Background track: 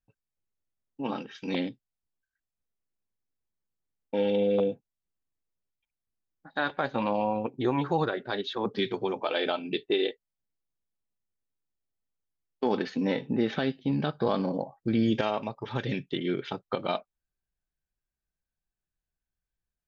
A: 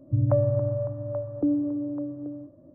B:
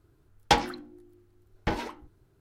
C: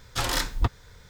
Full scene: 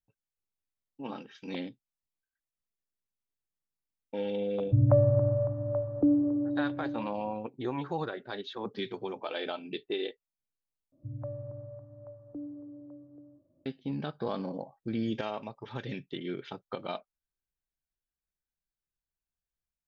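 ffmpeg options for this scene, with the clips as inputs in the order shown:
ffmpeg -i bed.wav -i cue0.wav -filter_complex "[1:a]asplit=2[link_01][link_02];[0:a]volume=-7dB,asplit=2[link_03][link_04];[link_03]atrim=end=10.924[link_05];[link_02]atrim=end=2.74,asetpts=PTS-STARTPTS,volume=-17dB[link_06];[link_04]atrim=start=13.656[link_07];[link_01]atrim=end=2.74,asetpts=PTS-STARTPTS,afade=type=in:duration=0.004:curve=hsin,afade=type=out:start_time=2.736:duration=0.004:curve=hsin,adelay=4600[link_08];[link_05][link_06]acrossfade=duration=0.004:curve1=hsin:curve2=hsin[link_09];[link_09][link_07]acrossfade=duration=0.004:curve1=hsin:curve2=hsin[link_10];[link_10][link_08]amix=inputs=2:normalize=0" out.wav

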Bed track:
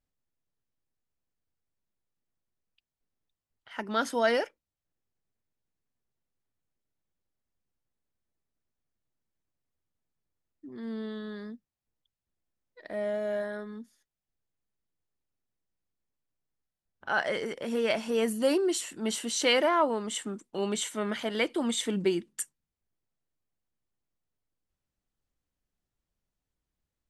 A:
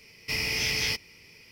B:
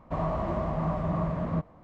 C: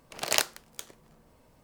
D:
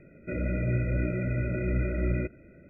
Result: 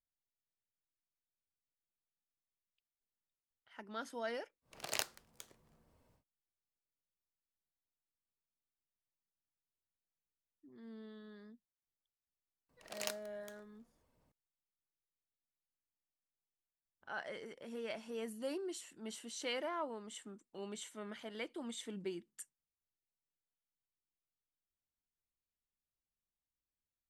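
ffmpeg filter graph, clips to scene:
ffmpeg -i bed.wav -i cue0.wav -i cue1.wav -i cue2.wav -filter_complex "[3:a]asplit=2[link_01][link_02];[0:a]volume=-15.5dB[link_03];[link_01]equalizer=frequency=87:width=1.5:gain=5[link_04];[link_02]aphaser=in_gain=1:out_gain=1:delay=4.3:decay=0.27:speed=1.3:type=sinusoidal[link_05];[link_04]atrim=end=1.63,asetpts=PTS-STARTPTS,volume=-12.5dB,afade=type=in:duration=0.1,afade=type=out:start_time=1.53:duration=0.1,adelay=203301S[link_06];[link_05]atrim=end=1.63,asetpts=PTS-STARTPTS,volume=-17dB,afade=type=in:duration=0.004:curve=hsin,afade=type=out:start_time=1.626:duration=0.004:curve=hsin,adelay=12690[link_07];[link_03][link_06][link_07]amix=inputs=3:normalize=0" out.wav

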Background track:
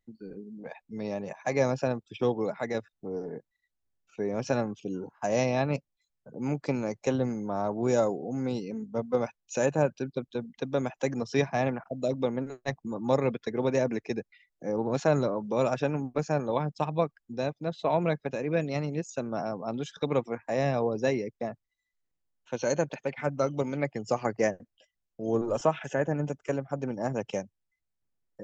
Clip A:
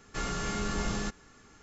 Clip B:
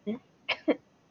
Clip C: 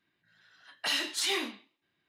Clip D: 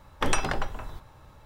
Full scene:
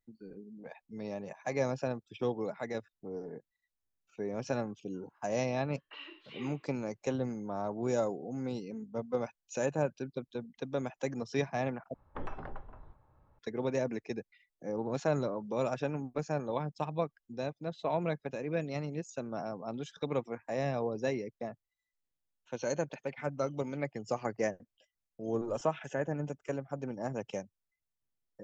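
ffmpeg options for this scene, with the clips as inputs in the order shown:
ffmpeg -i bed.wav -i cue0.wav -i cue1.wav -i cue2.wav -i cue3.wav -filter_complex "[0:a]volume=-6dB[link_01];[3:a]highpass=frequency=320:width=0.5412,highpass=frequency=320:width=1.3066,equalizer=frequency=330:width_type=q:width=4:gain=10,equalizer=frequency=460:width_type=q:width=4:gain=5,equalizer=frequency=710:width_type=q:width=4:gain=-10,equalizer=frequency=1100:width_type=q:width=4:gain=7,equalizer=frequency=1700:width_type=q:width=4:gain=-5,equalizer=frequency=2700:width_type=q:width=4:gain=6,lowpass=frequency=2900:width=0.5412,lowpass=frequency=2900:width=1.3066[link_02];[4:a]lowpass=1300[link_03];[link_01]asplit=2[link_04][link_05];[link_04]atrim=end=11.944[link_06];[link_03]atrim=end=1.45,asetpts=PTS-STARTPTS,volume=-13.5dB[link_07];[link_05]atrim=start=13.386[link_08];[link_02]atrim=end=2.08,asetpts=PTS-STARTPTS,volume=-17.5dB,afade=type=in:duration=0.004:curve=hsin,afade=type=out:start_time=2.076:duration=0.004:curve=hsin,adelay=5070[link_09];[link_06][link_07]acrossfade=duration=0.004:curve1=hsin:curve2=hsin[link_10];[link_10][link_08]acrossfade=duration=0.004:curve1=hsin:curve2=hsin[link_11];[link_11][link_09]amix=inputs=2:normalize=0" out.wav

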